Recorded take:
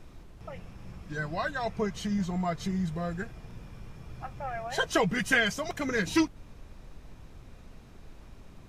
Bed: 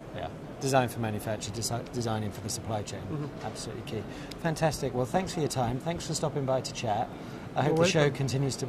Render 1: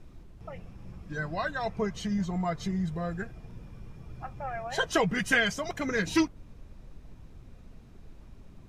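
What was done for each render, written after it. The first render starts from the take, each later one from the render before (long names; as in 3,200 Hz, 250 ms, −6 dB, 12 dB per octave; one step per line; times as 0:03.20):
broadband denoise 6 dB, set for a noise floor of −51 dBFS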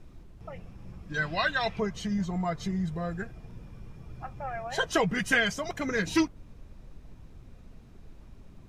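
0:01.14–0:01.80: parametric band 3,000 Hz +14.5 dB 1.6 octaves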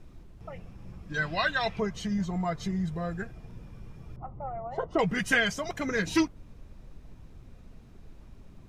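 0:04.16–0:04.99: Savitzky-Golay smoothing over 65 samples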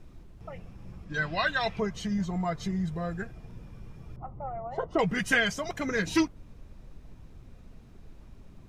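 0:01.04–0:01.47: high-shelf EQ 11,000 Hz −11 dB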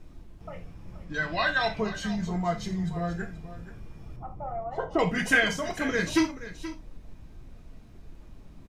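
single-tap delay 477 ms −14 dB
reverb whose tail is shaped and stops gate 110 ms falling, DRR 4 dB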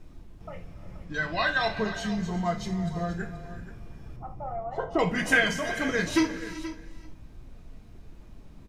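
reverb whose tail is shaped and stops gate 410 ms rising, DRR 12 dB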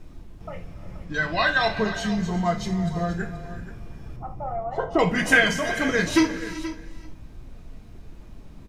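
level +4.5 dB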